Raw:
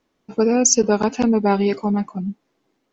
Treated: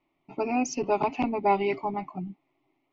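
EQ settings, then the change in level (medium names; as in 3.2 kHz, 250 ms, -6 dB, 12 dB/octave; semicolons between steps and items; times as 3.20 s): resonant low-pass 2.2 kHz, resonance Q 3.8; static phaser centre 320 Hz, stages 8; -2.5 dB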